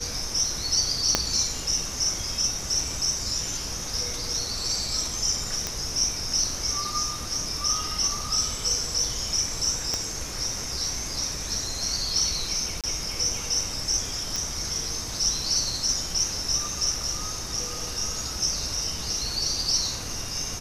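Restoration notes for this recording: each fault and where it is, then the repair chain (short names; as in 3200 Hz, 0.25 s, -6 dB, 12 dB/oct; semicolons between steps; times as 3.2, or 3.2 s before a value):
1.15 pop -4 dBFS
5.67 pop -11 dBFS
9.94 pop -12 dBFS
12.81–12.84 gap 27 ms
14.36 pop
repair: de-click; interpolate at 12.81, 27 ms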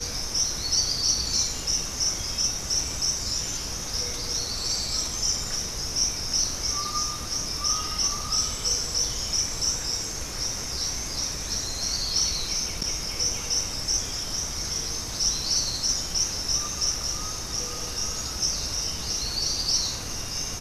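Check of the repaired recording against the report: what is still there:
1.15 pop
9.94 pop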